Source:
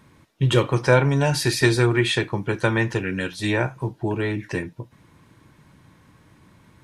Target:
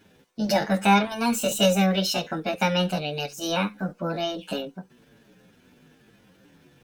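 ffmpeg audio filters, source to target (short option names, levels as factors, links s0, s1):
-filter_complex "[0:a]asetrate=70004,aresample=44100,atempo=0.629961,asplit=2[s0][s1];[s1]adelay=7.3,afreqshift=-1.1[s2];[s0][s2]amix=inputs=2:normalize=1"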